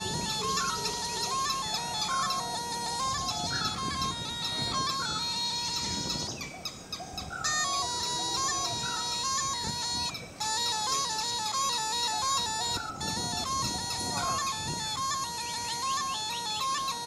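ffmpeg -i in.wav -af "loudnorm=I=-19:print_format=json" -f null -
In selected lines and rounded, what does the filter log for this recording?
"input_i" : "-30.0",
"input_tp" : "-16.1",
"input_lra" : "1.5",
"input_thresh" : "-40.0",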